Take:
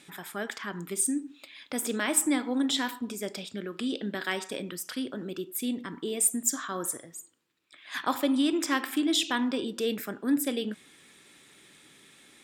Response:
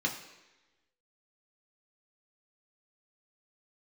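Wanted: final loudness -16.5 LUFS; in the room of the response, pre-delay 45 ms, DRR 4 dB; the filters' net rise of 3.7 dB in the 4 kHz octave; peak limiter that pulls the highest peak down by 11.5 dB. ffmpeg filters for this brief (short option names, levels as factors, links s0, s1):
-filter_complex "[0:a]equalizer=f=4000:t=o:g=4.5,alimiter=limit=0.0891:level=0:latency=1,asplit=2[s0][s1];[1:a]atrim=start_sample=2205,adelay=45[s2];[s1][s2]afir=irnorm=-1:irlink=0,volume=0.299[s3];[s0][s3]amix=inputs=2:normalize=0,volume=5.01"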